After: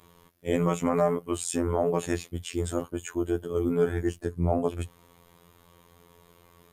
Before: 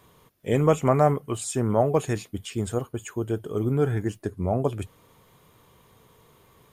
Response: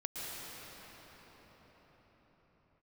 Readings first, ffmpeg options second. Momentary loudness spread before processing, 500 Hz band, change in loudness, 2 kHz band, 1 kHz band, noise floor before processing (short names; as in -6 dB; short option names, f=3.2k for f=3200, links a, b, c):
12 LU, -2.5 dB, -3.0 dB, -1.5 dB, -5.0 dB, -59 dBFS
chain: -af "alimiter=limit=-13.5dB:level=0:latency=1:release=71,afftfilt=real='hypot(re,im)*cos(PI*b)':imag='0':win_size=2048:overlap=0.75,volume=3dB"